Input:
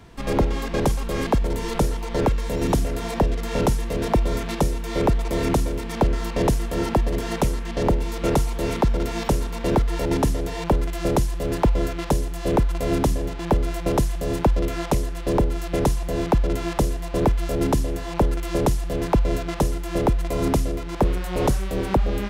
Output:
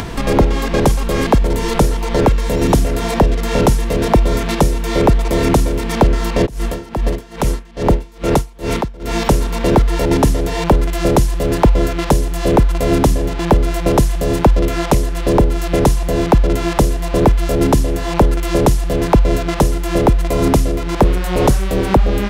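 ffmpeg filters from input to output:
-filter_complex "[0:a]asplit=3[a][b][c];[a]afade=t=out:st=6.45:d=0.02[d];[b]aeval=exprs='val(0)*pow(10,-26*(0.5-0.5*cos(2*PI*2.4*n/s))/20)':c=same,afade=t=in:st=6.45:d=0.02,afade=t=out:st=9.18:d=0.02[e];[c]afade=t=in:st=9.18:d=0.02[f];[d][e][f]amix=inputs=3:normalize=0,acompressor=mode=upward:threshold=-21dB:ratio=2.5,volume=8dB"

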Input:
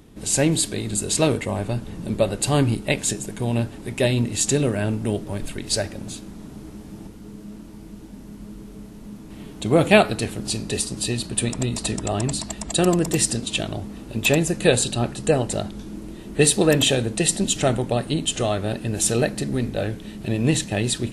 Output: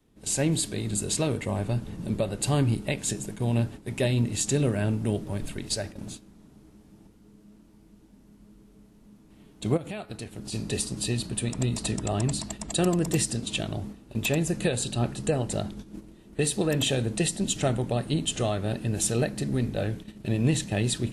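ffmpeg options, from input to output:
-filter_complex "[0:a]asplit=3[a][b][c];[a]afade=t=out:st=9.76:d=0.02[d];[b]acompressor=threshold=-28dB:ratio=8:attack=3.2:release=140:knee=1:detection=peak,afade=t=in:st=9.76:d=0.02,afade=t=out:st=10.52:d=0.02[e];[c]afade=t=in:st=10.52:d=0.02[f];[d][e][f]amix=inputs=3:normalize=0,alimiter=limit=-10.5dB:level=0:latency=1:release=248,adynamicequalizer=threshold=0.0224:dfrequency=130:dqfactor=0.92:tfrequency=130:tqfactor=0.92:attack=5:release=100:ratio=0.375:range=2:mode=boostabove:tftype=bell,agate=range=-10dB:threshold=-32dB:ratio=16:detection=peak,volume=-5dB"

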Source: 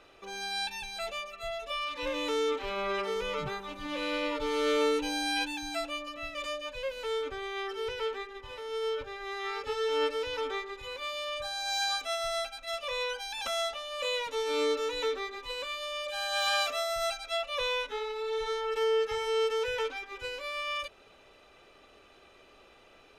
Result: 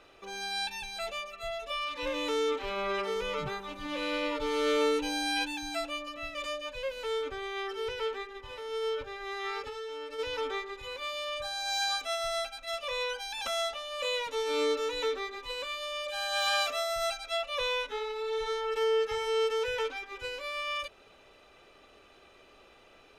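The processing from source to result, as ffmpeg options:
-filter_complex "[0:a]asplit=3[a][b][c];[a]afade=t=out:st=9.63:d=0.02[d];[b]acompressor=threshold=-36dB:ratio=12:attack=3.2:release=140:knee=1:detection=peak,afade=t=in:st=9.63:d=0.02,afade=t=out:st=10.18:d=0.02[e];[c]afade=t=in:st=10.18:d=0.02[f];[d][e][f]amix=inputs=3:normalize=0"

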